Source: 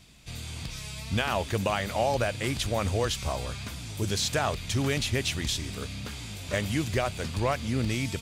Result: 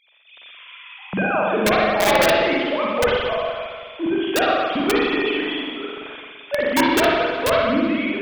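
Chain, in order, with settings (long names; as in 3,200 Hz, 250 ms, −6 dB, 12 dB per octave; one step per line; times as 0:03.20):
three sine waves on the formant tracks
wrap-around overflow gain 17 dB
spring reverb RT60 1.7 s, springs 42/57 ms, chirp 20 ms, DRR −5 dB
level +3 dB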